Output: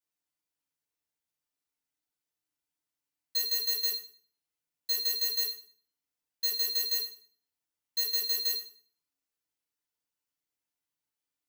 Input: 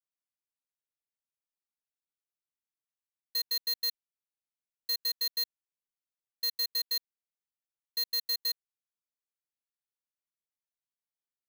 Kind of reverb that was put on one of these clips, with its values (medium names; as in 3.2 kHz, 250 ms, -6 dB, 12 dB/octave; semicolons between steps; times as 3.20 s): FDN reverb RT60 0.47 s, low-frequency decay 1.25×, high-frequency decay 0.95×, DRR -5 dB; trim -1.5 dB